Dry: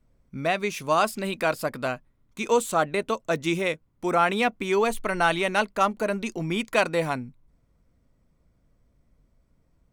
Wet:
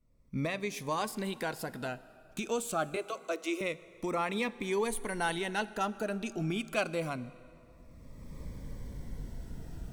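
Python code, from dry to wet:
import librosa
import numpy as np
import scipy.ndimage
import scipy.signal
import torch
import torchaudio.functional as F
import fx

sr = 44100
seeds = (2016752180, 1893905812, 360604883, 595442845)

y = fx.recorder_agc(x, sr, target_db=-17.0, rise_db_per_s=24.0, max_gain_db=30)
y = fx.steep_highpass(y, sr, hz=310.0, slope=96, at=(2.96, 3.61))
y = fx.peak_eq(y, sr, hz=9900.0, db=12.5, octaves=0.3, at=(4.71, 5.39))
y = fx.rev_plate(y, sr, seeds[0], rt60_s=3.0, hf_ratio=0.7, predelay_ms=0, drr_db=16.5)
y = fx.notch_cascade(y, sr, direction='falling', hz=0.26)
y = y * librosa.db_to_amplitude(-7.5)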